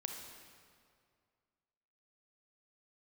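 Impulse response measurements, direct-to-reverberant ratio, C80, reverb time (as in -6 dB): 3.0 dB, 5.5 dB, 2.2 s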